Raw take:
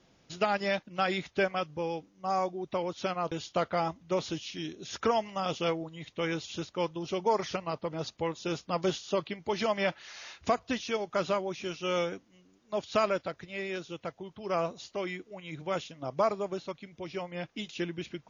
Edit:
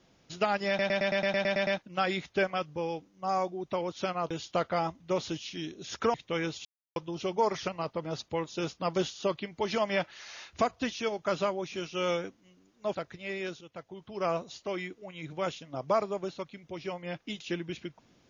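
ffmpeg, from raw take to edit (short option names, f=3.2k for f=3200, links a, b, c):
-filter_complex "[0:a]asplit=15[a][b][c][d][e][f][g][h][i][j][k][l][m][n][o];[a]atrim=end=0.792[p];[b]atrim=start=0.678:end=0.792[q];[c]atrim=start=0.678:end=0.792[r];[d]atrim=start=0.678:end=0.792[s];[e]atrim=start=0.678:end=0.792[t];[f]atrim=start=0.678:end=0.792[u];[g]atrim=start=0.678:end=0.792[v];[h]atrim=start=0.678:end=0.792[w];[i]atrim=start=0.678:end=0.792[x];[j]atrim=start=0.678:end=5.152[y];[k]atrim=start=6.018:end=6.53,asetpts=PTS-STARTPTS,afade=t=out:st=0.508:d=0.004:c=hsin[z];[l]atrim=start=6.53:end=6.84,asetpts=PTS-STARTPTS,volume=0[aa];[m]atrim=start=6.84:end=12.832,asetpts=PTS-STARTPTS,afade=t=in:d=0.004:c=hsin[ab];[n]atrim=start=13.238:end=13.9,asetpts=PTS-STARTPTS,afade=t=out:st=0.658:d=0.004:c=hsin:silence=0.251189[ac];[o]atrim=start=13.9,asetpts=PTS-STARTPTS,afade=t=in:d=0.49:silence=0.251189[ad];[p][q]acrossfade=d=0.004:c1=hsin:c2=hsin[ae];[ae][r]acrossfade=d=0.004:c1=hsin:c2=hsin[af];[af][s]acrossfade=d=0.004:c1=hsin:c2=hsin[ag];[ag][t]acrossfade=d=0.004:c1=hsin:c2=hsin[ah];[ah][u]acrossfade=d=0.004:c1=hsin:c2=hsin[ai];[ai][v]acrossfade=d=0.004:c1=hsin:c2=hsin[aj];[aj][w]acrossfade=d=0.004:c1=hsin:c2=hsin[ak];[ak][x]acrossfade=d=0.004:c1=hsin:c2=hsin[al];[al][y]acrossfade=d=0.004:c1=hsin:c2=hsin[am];[z][aa][ab]concat=n=3:v=0:a=1[an];[am][an]acrossfade=d=0.004:c1=hsin:c2=hsin[ao];[ac][ad]concat=n=2:v=0:a=1[ap];[ao][ap]acrossfade=d=0.004:c1=hsin:c2=hsin"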